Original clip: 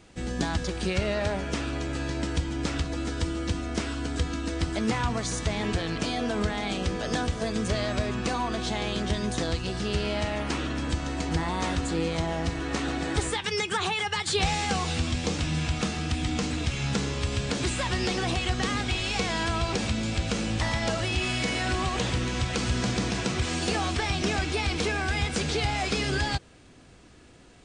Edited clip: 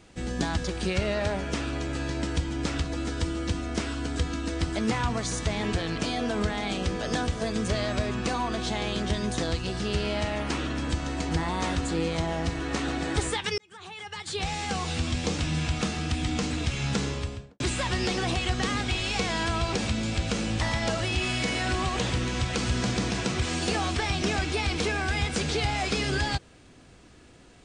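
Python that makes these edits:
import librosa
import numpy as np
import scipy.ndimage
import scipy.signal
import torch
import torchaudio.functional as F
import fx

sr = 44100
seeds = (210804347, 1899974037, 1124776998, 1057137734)

y = fx.studio_fade_out(x, sr, start_s=17.04, length_s=0.56)
y = fx.edit(y, sr, fx.fade_in_span(start_s=13.58, length_s=1.6), tone=tone)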